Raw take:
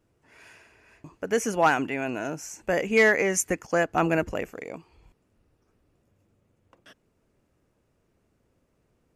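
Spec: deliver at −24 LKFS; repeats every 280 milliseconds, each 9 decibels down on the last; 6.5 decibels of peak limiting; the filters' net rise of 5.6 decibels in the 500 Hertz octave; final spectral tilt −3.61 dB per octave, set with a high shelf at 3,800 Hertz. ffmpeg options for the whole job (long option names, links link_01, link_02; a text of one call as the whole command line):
ffmpeg -i in.wav -af "equalizer=frequency=500:width_type=o:gain=6.5,highshelf=frequency=3800:gain=8.5,alimiter=limit=-11.5dB:level=0:latency=1,aecho=1:1:280|560|840|1120:0.355|0.124|0.0435|0.0152,volume=-0.5dB" out.wav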